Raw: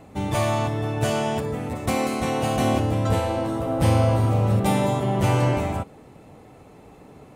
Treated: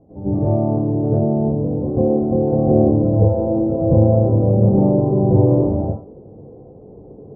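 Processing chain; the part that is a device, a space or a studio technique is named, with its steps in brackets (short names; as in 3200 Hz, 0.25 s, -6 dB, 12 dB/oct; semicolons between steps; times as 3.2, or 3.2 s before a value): next room (LPF 620 Hz 24 dB/oct; reverb RT60 0.40 s, pre-delay 87 ms, DRR -10.5 dB); 1.19–2.47 high shelf 2100 Hz -10.5 dB; gain -4 dB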